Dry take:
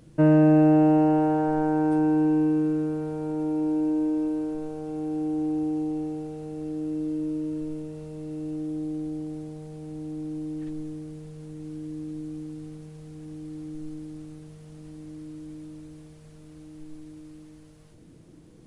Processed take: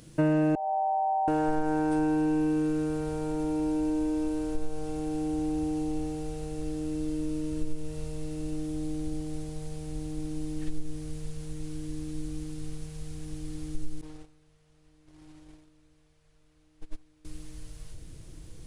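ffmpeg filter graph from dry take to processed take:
-filter_complex "[0:a]asettb=1/sr,asplit=3[s0][s1][s2];[s0]atrim=end=0.554[s3];[s1]atrim=start=0.55:end=1.28,asetpts=PTS-STARTPTS,afade=t=in:d=0.004:c=qsin,afade=t=out:st=0.726:d=0.004:c=qsin,asuperpass=centerf=740:order=8:qfactor=2.7,aecho=1:1:2.3:0.97,atrim=end_sample=32193[s4];[s2]atrim=start=1.276[s5];[s3][s4]acrossfade=d=0.004:c1=hsin:c2=qsin[s6];[s6][s5]acrossfade=d=0.004:c1=qsin:c2=hsin,asettb=1/sr,asplit=3[s7][s8][s9];[s7]atrim=end=14.014[s10];[s8]atrim=start=14.01:end=17.25,asetpts=PTS-STARTPTS,afade=t=in:d=0.004:c=qsin,afade=t=out:st=3.236:d=0.004:c=qsin,agate=range=0.0891:threshold=0.0112:ratio=16:release=100:detection=peak,asplit=2[s11][s12];[s12]highpass=f=720:p=1,volume=5.62,asoftclip=type=tanh:threshold=0.0237[s13];[s11][s13]amix=inputs=2:normalize=0,lowpass=f=1700:p=1,volume=0.501[s14];[s9]atrim=start=17.246[s15];[s10][s14]acrossfade=d=0.004:c1=hsin:c2=qsin[s16];[s16][s15]acrossfade=d=0.004:c1=qsin:c2=hsin,asubboost=boost=10:cutoff=68,acompressor=threshold=0.0631:ratio=3,highshelf=f=2100:g=11"

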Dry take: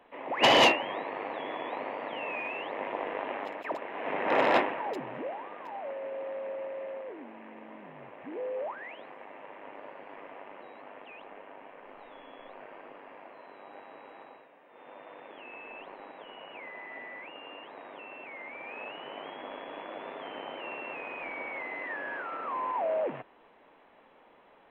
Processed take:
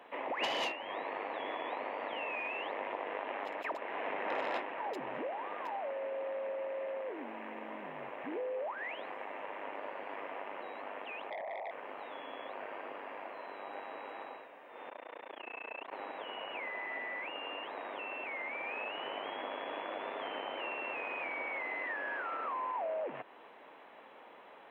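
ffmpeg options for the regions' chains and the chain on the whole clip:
-filter_complex "[0:a]asettb=1/sr,asplit=3[s0][s1][s2];[s0]atrim=end=11.304[s3];[s1]atrim=start=11.3:end=11.71,asetpts=PTS-STARTPTS,afade=t=in:d=0.004:c=qsin,afade=t=out:st=0.406:d=0.004:c=qsin,asuperpass=centerf=680:order=4:qfactor=3,aeval=exprs='0.00944*sin(PI/2*3.16*val(0)/0.00944)':c=same[s4];[s2]atrim=start=11.706[s5];[s3][s4]acrossfade=d=0.004:c1=hsin:c2=qsin[s6];[s6][s5]acrossfade=d=0.004:c1=qsin:c2=hsin,asettb=1/sr,asplit=3[s7][s8][s9];[s7]atrim=end=14.894[s10];[s8]atrim=start=14.89:end=15.93,asetpts=PTS-STARTPTS,afade=t=in:d=0.004:c=qsin,afade=t=out:st=1.036:d=0.004:c=qsin,highpass=180,tremolo=f=29:d=1[s11];[s9]atrim=start=15.926[s12];[s10][s11]acrossfade=d=0.004:c1=hsin:c2=qsin[s13];[s13][s12]acrossfade=d=0.004:c1=qsin:c2=hsin,highpass=f=370:p=1,acompressor=threshold=0.00794:ratio=4,volume=1.88"

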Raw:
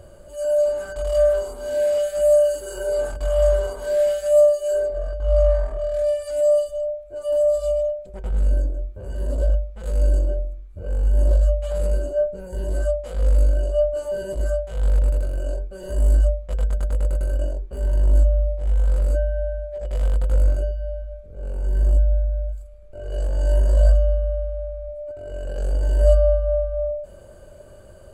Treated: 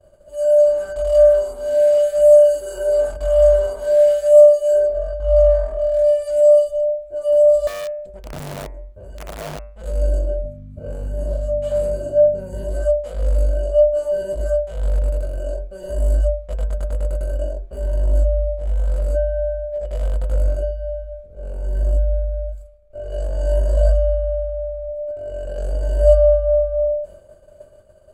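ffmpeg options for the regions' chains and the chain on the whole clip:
-filter_complex "[0:a]asettb=1/sr,asplit=3[s0][s1][s2];[s0]atrim=end=7.674[s3];[s1]atrim=start=7.67:end=9.79,asetpts=PTS-STARTPTS,afade=t=in:d=0.004:c=qsin,afade=t=out:st=2.116:d=0.004:c=qsin,acompressor=threshold=0.02:ratio=2.5:attack=3.2:release=140:knee=1:detection=peak,aeval=exprs='(mod(22.4*val(0)+1,2)-1)/22.4':c=same[s4];[s2]atrim=start=9.786[s5];[s3][s4]acrossfade=d=0.004:c1=hsin:c2=qsin[s6];[s6][s5]acrossfade=d=0.004:c1=qsin:c2=hsin,asettb=1/sr,asplit=3[s7][s8][s9];[s7]atrim=end=10.424[s10];[s8]atrim=start=10.42:end=12.64,asetpts=PTS-STARTPTS,afade=t=in:d=0.004:c=qsin,afade=t=out:st=2.216:d=0.004:c=qsin,acompressor=threshold=0.126:ratio=3:attack=3.2:release=140:knee=1:detection=peak,aeval=exprs='val(0)+0.0224*(sin(2*PI*50*n/s)+sin(2*PI*2*50*n/s)/2+sin(2*PI*3*50*n/s)/3+sin(2*PI*4*50*n/s)/4+sin(2*PI*5*50*n/s)/5)':c=same,asplit=2[s11][s12];[s12]adelay=32,volume=0.562[s13];[s11][s13]amix=inputs=2:normalize=0,atrim=end_sample=97902[s14];[s9]atrim=start=12.636[s15];[s10][s14]acrossfade=d=0.004:c1=hsin:c2=qsin[s16];[s16][s15]acrossfade=d=0.004:c1=qsin:c2=hsin,equalizer=f=620:w=5.1:g=9,bandreject=f=111.6:t=h:w=4,bandreject=f=223.2:t=h:w=4,bandreject=f=334.8:t=h:w=4,bandreject=f=446.4:t=h:w=4,bandreject=f=558:t=h:w=4,bandreject=f=669.6:t=h:w=4,bandreject=f=781.2:t=h:w=4,bandreject=f=892.8:t=h:w=4,bandreject=f=1004.4:t=h:w=4,bandreject=f=1116:t=h:w=4,bandreject=f=1227.6:t=h:w=4,bandreject=f=1339.2:t=h:w=4,bandreject=f=1450.8:t=h:w=4,bandreject=f=1562.4:t=h:w=4,bandreject=f=1674:t=h:w=4,bandreject=f=1785.6:t=h:w=4,bandreject=f=1897.2:t=h:w=4,bandreject=f=2008.8:t=h:w=4,bandreject=f=2120.4:t=h:w=4,bandreject=f=2232:t=h:w=4,bandreject=f=2343.6:t=h:w=4,bandreject=f=2455.2:t=h:w=4,bandreject=f=2566.8:t=h:w=4,bandreject=f=2678.4:t=h:w=4,agate=range=0.0224:threshold=0.02:ratio=3:detection=peak,volume=0.891"

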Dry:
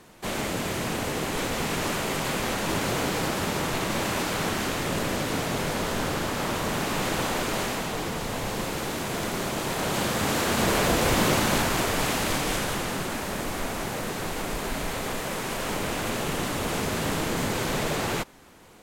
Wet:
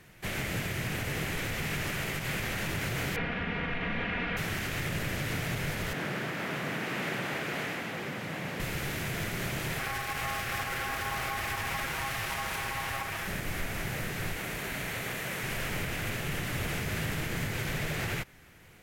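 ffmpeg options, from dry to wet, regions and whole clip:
-filter_complex "[0:a]asettb=1/sr,asplit=3[s0][s1][s2];[s0]atrim=end=3.164[s3];[s1]atrim=start=3.16:end=4.37,asetpts=PTS-STARTPTS,afade=t=in:d=0.004:c=qsin,afade=t=out:st=1.206:d=0.004:c=qsin,lowpass=f=3000:w=0.5412,lowpass=f=3000:w=1.3066,aecho=1:1:4.2:0.76,atrim=end_sample=53361[s4];[s2]atrim=start=4.366[s5];[s3][s4]acrossfade=d=0.004:c1=hsin:c2=qsin[s6];[s6][s5]acrossfade=d=0.004:c1=qsin:c2=hsin,asettb=1/sr,asplit=3[s7][s8][s9];[s7]atrim=end=5.934[s10];[s8]atrim=start=5.93:end=8.6,asetpts=PTS-STARTPTS,afade=t=in:d=0.004:c=qsin,afade=t=out:st=2.666:d=0.004:c=qsin,highpass=86,highshelf=f=4300:g=-10.5,afreqshift=54[s11];[s9]atrim=start=8.596[s12];[s10][s11]acrossfade=d=0.004:c1=hsin:c2=qsin[s13];[s13][s12]acrossfade=d=0.004:c1=qsin:c2=hsin,asettb=1/sr,asplit=3[s14][s15][s16];[s14]atrim=end=9.794[s17];[s15]atrim=start=9.79:end=13.27,asetpts=PTS-STARTPTS,afade=t=in:d=0.004:c=qsin,afade=t=out:st=3.476:d=0.004:c=qsin,equalizer=f=140:t=o:w=0.35:g=13,aecho=1:1:7.1:0.82,atrim=end_sample=153468,aeval=exprs='val(0)*sin(2*PI*950*n/s)':c=same[s18];[s16]atrim=start=13.266[s19];[s17][s18]acrossfade=d=0.004:c1=hsin:c2=qsin[s20];[s20][s19]acrossfade=d=0.004:c1=qsin:c2=hsin,asettb=1/sr,asplit=3[s21][s22][s23];[s21]atrim=end=14.364[s24];[s22]atrim=start=14.36:end=15.43,asetpts=PTS-STARTPTS,afade=t=in:d=0.004:c=qsin,afade=t=out:st=1.066:d=0.004:c=qsin,highpass=f=150:p=1,bandreject=f=5000:w=22[s25];[s23]atrim=start=15.426[s26];[s24][s25]acrossfade=d=0.004:c1=hsin:c2=qsin[s27];[s27][s26]acrossfade=d=0.004:c1=qsin:c2=hsin,equalizer=f=125:t=o:w=1:g=5,equalizer=f=250:t=o:w=1:g=-8,equalizer=f=500:t=o:w=1:g=-5,equalizer=f=1000:t=o:w=1:g=-10,equalizer=f=2000:t=o:w=1:g=5,equalizer=f=4000:t=o:w=1:g=-5,equalizer=f=8000:t=o:w=1:g=-6,alimiter=limit=0.0708:level=0:latency=1:release=106"

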